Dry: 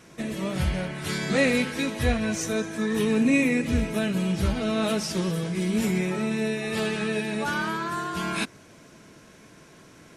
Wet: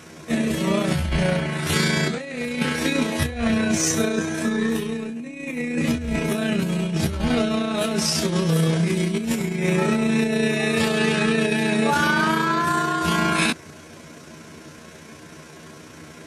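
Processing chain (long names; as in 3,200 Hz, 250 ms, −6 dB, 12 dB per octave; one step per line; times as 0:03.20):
high-pass filter 52 Hz 12 dB per octave
compressor whose output falls as the input rises −27 dBFS, ratio −0.5
time stretch by overlap-add 1.6×, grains 68 ms
level +7.5 dB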